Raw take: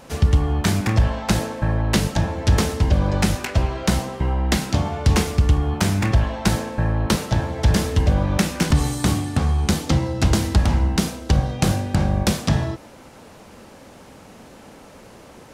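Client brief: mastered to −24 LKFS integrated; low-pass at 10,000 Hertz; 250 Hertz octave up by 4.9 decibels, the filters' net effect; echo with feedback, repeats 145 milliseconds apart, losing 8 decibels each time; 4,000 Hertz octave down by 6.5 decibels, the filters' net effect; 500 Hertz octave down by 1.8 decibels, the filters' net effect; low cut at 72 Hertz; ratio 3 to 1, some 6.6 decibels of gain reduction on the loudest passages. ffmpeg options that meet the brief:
ffmpeg -i in.wav -af "highpass=72,lowpass=10000,equalizer=frequency=250:width_type=o:gain=8,equalizer=frequency=500:width_type=o:gain=-5,equalizer=frequency=4000:width_type=o:gain=-8.5,acompressor=threshold=-20dB:ratio=3,aecho=1:1:145|290|435|580|725:0.398|0.159|0.0637|0.0255|0.0102" out.wav

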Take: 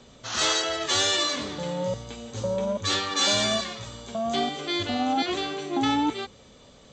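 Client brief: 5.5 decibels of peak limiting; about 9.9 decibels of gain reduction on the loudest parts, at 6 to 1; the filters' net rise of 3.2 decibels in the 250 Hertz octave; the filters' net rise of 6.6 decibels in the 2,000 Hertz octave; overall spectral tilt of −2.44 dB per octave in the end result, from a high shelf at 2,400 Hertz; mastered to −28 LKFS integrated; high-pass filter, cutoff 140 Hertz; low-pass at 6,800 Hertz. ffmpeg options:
ffmpeg -i in.wav -af "highpass=140,lowpass=6800,equalizer=frequency=250:width_type=o:gain=4,equalizer=frequency=2000:width_type=o:gain=4.5,highshelf=frequency=2400:gain=7,acompressor=threshold=-26dB:ratio=6,volume=2dB,alimiter=limit=-19dB:level=0:latency=1" out.wav

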